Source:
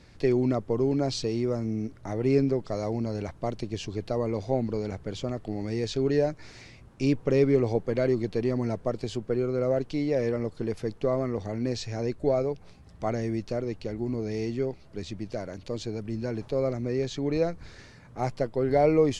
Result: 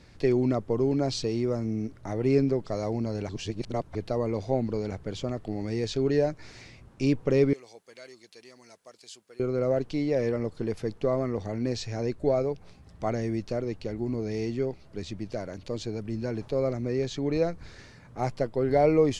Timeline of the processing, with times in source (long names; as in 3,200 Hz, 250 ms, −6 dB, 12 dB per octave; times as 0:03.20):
0:03.29–0:03.95: reverse
0:07.53–0:09.40: first difference